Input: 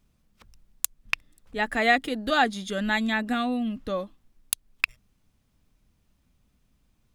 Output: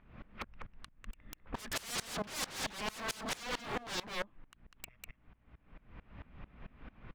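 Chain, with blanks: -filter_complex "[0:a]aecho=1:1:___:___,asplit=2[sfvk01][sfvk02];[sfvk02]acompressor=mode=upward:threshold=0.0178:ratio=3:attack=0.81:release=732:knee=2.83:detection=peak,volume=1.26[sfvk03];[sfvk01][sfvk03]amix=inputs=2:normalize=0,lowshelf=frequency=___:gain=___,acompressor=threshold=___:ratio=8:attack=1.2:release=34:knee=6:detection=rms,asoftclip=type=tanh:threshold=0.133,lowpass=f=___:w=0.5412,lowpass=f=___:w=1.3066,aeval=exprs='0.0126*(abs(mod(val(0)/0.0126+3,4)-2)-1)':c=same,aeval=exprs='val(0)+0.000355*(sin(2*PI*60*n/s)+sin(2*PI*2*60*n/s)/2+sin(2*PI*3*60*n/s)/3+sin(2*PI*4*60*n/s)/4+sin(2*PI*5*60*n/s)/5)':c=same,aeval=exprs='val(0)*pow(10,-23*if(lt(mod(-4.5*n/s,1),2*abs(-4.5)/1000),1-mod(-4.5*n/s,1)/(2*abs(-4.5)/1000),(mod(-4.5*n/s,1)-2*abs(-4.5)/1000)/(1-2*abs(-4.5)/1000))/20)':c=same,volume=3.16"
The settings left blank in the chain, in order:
198, 0.422, 440, -8, 0.0631, 2300, 2300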